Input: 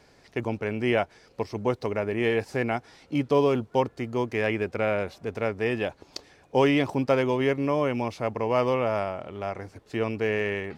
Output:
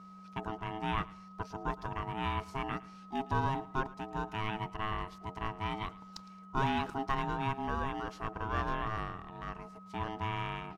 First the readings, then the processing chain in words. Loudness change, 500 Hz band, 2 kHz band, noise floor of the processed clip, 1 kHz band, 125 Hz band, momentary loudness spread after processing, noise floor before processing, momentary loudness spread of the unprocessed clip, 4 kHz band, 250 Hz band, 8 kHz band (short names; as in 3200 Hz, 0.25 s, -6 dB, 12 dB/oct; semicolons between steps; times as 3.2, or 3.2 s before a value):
-10.0 dB, -18.0 dB, -9.0 dB, -52 dBFS, -2.5 dB, -6.5 dB, 11 LU, -58 dBFS, 11 LU, -6.5 dB, -12.0 dB, n/a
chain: whine 730 Hz -39 dBFS; ring modulator 540 Hz; feedback echo 0.11 s, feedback 30%, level -20.5 dB; gain -7 dB